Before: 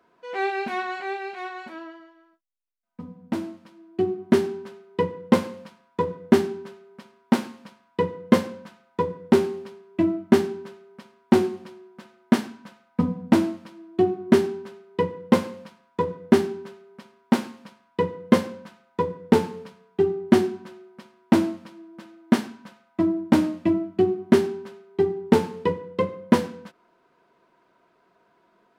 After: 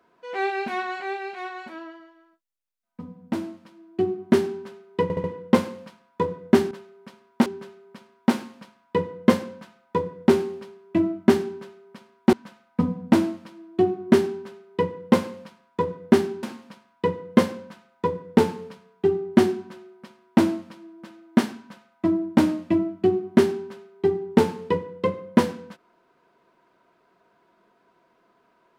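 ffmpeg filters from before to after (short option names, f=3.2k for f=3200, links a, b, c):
-filter_complex "[0:a]asplit=8[a][b][c][d][e][f][g][h];[a]atrim=end=5.102[i];[b]atrim=start=5.028:end=5.102[j];[c]atrim=start=5.028:end=5.102[k];[d]atrim=start=5.028:end=6.502[l];[e]atrim=start=16.628:end=17.382[m];[f]atrim=start=6.498:end=11.372[n];[g]atrim=start=12.528:end=16.632[o];[h]atrim=start=17.378[p];[i][j]acrossfade=d=0.004:c1=hsin:c2=hsin[q];[q][k]acrossfade=d=0.004:c1=hsin:c2=hsin[r];[r][l]acrossfade=d=0.004:c1=hsin:c2=hsin[s];[s][m]acrossfade=d=0.004:c1=hsin:c2=hsin[t];[t][n]acrossfade=d=0.004:c1=hsin:c2=hsin[u];[u][o]acrossfade=d=0.004:c1=hsin:c2=hsin[v];[v][p]acrossfade=d=0.004:c1=hsin:c2=hsin"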